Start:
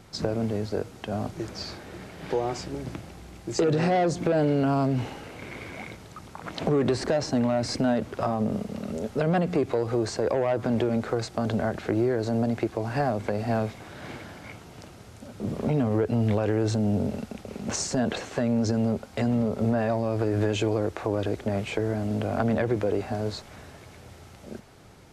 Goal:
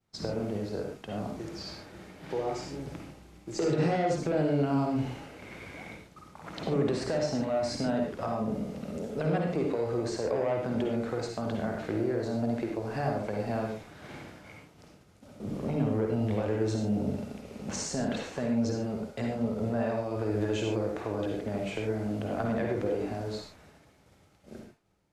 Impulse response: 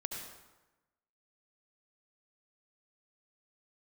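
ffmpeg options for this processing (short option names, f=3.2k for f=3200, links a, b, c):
-filter_complex "[0:a]agate=range=-33dB:threshold=-39dB:ratio=3:detection=peak[a];[1:a]atrim=start_sample=2205,afade=t=out:st=0.26:d=0.01,atrim=end_sample=11907,asetrate=61740,aresample=44100[b];[a][b]afir=irnorm=-1:irlink=0,volume=-2dB"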